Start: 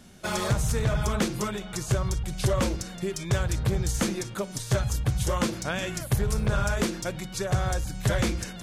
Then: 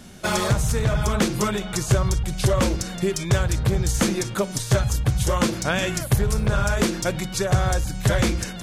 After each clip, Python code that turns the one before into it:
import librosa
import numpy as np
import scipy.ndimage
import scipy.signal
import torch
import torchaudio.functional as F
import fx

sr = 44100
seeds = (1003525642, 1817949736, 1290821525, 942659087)

y = fx.rider(x, sr, range_db=3, speed_s=0.5)
y = F.gain(torch.from_numpy(y), 5.5).numpy()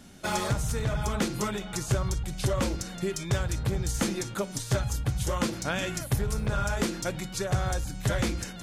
y = fx.comb_fb(x, sr, f0_hz=280.0, decay_s=0.16, harmonics='odd', damping=0.0, mix_pct=60)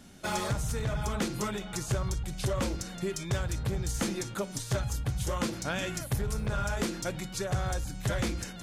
y = 10.0 ** (-18.0 / 20.0) * np.tanh(x / 10.0 ** (-18.0 / 20.0))
y = F.gain(torch.from_numpy(y), -2.0).numpy()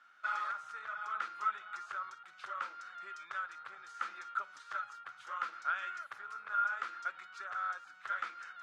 y = fx.ladder_bandpass(x, sr, hz=1400.0, resonance_pct=80)
y = F.gain(torch.from_numpy(y), 4.0).numpy()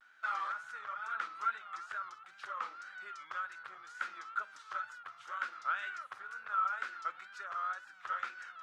y = fx.wow_flutter(x, sr, seeds[0], rate_hz=2.1, depth_cents=120.0)